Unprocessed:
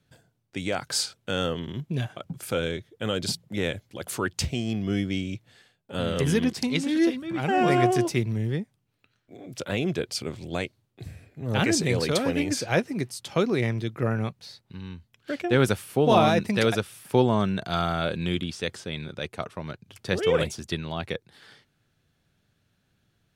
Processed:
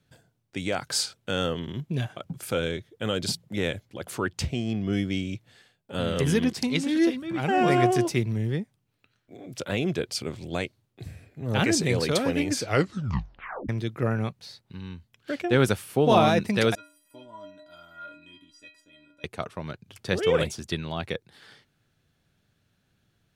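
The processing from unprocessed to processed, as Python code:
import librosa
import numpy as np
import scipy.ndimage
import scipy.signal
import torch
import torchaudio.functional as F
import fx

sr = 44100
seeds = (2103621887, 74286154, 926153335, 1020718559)

y = fx.high_shelf(x, sr, hz=3700.0, db=-6.5, at=(3.85, 4.93))
y = fx.stiff_resonator(y, sr, f0_hz=290.0, decay_s=0.61, stiffness=0.03, at=(16.75, 19.24))
y = fx.edit(y, sr, fx.tape_stop(start_s=12.6, length_s=1.09), tone=tone)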